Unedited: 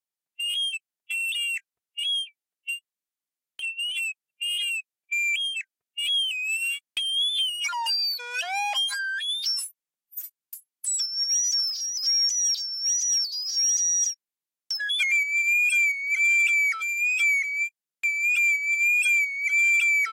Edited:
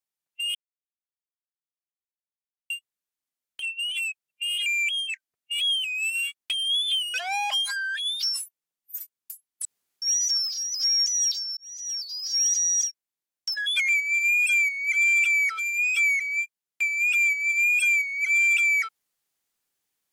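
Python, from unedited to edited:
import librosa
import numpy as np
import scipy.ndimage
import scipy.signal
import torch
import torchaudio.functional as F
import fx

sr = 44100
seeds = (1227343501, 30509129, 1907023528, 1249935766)

y = fx.edit(x, sr, fx.silence(start_s=0.55, length_s=2.15),
    fx.cut(start_s=4.66, length_s=0.47),
    fx.cut(start_s=7.61, length_s=0.76),
    fx.room_tone_fill(start_s=10.88, length_s=0.37),
    fx.fade_in_span(start_s=12.8, length_s=0.84), tone=tone)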